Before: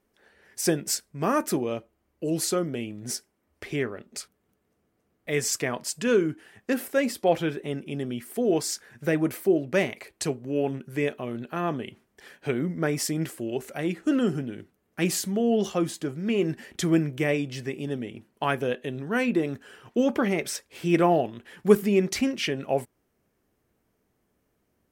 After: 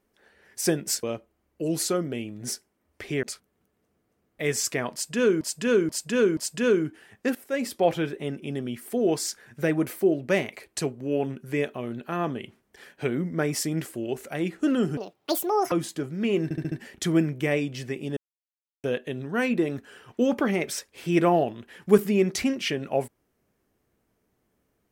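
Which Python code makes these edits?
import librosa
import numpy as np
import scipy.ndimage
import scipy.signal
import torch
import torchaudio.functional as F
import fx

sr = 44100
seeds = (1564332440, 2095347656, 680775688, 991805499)

y = fx.edit(x, sr, fx.cut(start_s=1.03, length_s=0.62),
    fx.cut(start_s=3.85, length_s=0.26),
    fx.repeat(start_s=5.81, length_s=0.48, count=4),
    fx.fade_in_from(start_s=6.79, length_s=0.36, floor_db=-16.0),
    fx.speed_span(start_s=14.41, length_s=1.36, speed=1.82),
    fx.stutter(start_s=16.49, slice_s=0.07, count=5),
    fx.silence(start_s=17.94, length_s=0.67), tone=tone)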